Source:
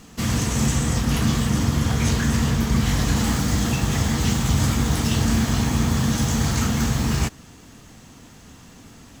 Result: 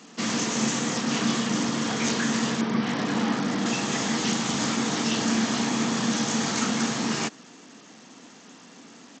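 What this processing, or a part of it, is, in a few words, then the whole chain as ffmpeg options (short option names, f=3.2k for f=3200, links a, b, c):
Bluetooth headset: -filter_complex "[0:a]asettb=1/sr,asplit=3[a][b][c];[a]atrim=end=2.614[d];[b]atrim=start=2.61:end=3.66,asetpts=PTS-STARTPTS,afade=t=in:d=0.004:c=qsin,afade=t=out:st=1.046:d=0.004:c=qsin,aemphasis=mode=reproduction:type=75fm[e];[c]atrim=start=3.656[f];[d][e]acrossfade=d=0.004:c1=hsin:c2=qsin[g];[g][f]acrossfade=d=0.004:c1=qsin:c2=hsin,highpass=f=210:w=0.5412,highpass=f=210:w=1.3066,aresample=16000,aresample=44100" -ar 32000 -c:a sbc -b:a 64k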